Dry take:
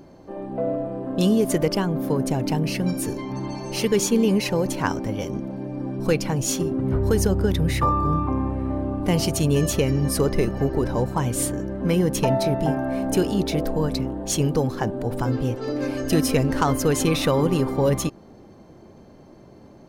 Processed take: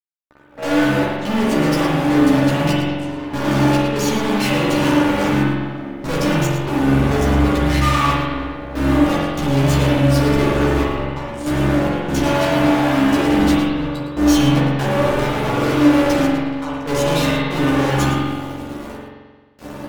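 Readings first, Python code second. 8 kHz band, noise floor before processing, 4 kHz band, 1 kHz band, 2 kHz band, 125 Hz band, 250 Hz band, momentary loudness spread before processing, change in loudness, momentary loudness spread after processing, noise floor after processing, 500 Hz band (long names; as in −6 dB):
−2.0 dB, −47 dBFS, +6.5 dB, +7.5 dB, +11.5 dB, +4.5 dB, +7.0 dB, 8 LU, +5.5 dB, 9 LU, −41 dBFS, +3.5 dB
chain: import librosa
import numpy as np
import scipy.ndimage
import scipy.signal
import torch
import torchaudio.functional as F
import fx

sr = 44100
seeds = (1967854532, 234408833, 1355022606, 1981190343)

p1 = scipy.signal.sosfilt(scipy.signal.butter(2, 4600.0, 'lowpass', fs=sr, output='sos'), x)
p2 = fx.rider(p1, sr, range_db=10, speed_s=0.5)
p3 = fx.quant_dither(p2, sr, seeds[0], bits=10, dither='none')
p4 = fx.step_gate(p3, sr, bpm=72, pattern='...xx.xxxxxxx', floor_db=-24.0, edge_ms=4.5)
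p5 = fx.fuzz(p4, sr, gain_db=42.0, gate_db=-47.0)
p6 = fx.comb_fb(p5, sr, f0_hz=290.0, decay_s=0.22, harmonics='all', damping=0.0, mix_pct=80)
p7 = fx.wow_flutter(p6, sr, seeds[1], rate_hz=2.1, depth_cents=63.0)
p8 = fx.doubler(p7, sr, ms=14.0, db=-3.0)
p9 = p8 + fx.echo_single(p8, sr, ms=111, db=-10.0, dry=0)
y = fx.rev_spring(p9, sr, rt60_s=1.4, pass_ms=(44,), chirp_ms=70, drr_db=-4.0)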